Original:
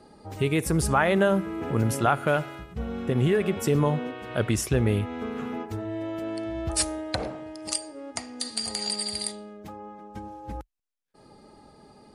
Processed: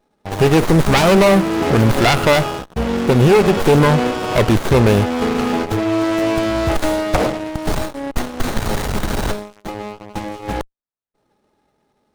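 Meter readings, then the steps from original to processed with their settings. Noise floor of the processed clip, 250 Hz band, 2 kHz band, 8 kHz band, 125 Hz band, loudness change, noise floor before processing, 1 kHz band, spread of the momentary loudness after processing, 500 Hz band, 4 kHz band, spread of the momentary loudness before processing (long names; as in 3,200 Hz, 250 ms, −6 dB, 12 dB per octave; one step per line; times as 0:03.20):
−67 dBFS, +11.5 dB, +10.5 dB, +2.0 dB, +10.5 dB, +11.0 dB, −54 dBFS, +11.5 dB, 16 LU, +12.0 dB, +9.0 dB, 17 LU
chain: spectral tilt +2 dB per octave
leveller curve on the samples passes 5
windowed peak hold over 17 samples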